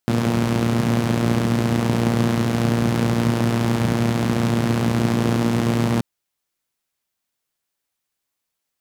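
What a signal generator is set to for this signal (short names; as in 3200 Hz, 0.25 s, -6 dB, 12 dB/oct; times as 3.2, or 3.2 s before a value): four-cylinder engine model, steady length 5.93 s, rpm 3500, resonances 140/200 Hz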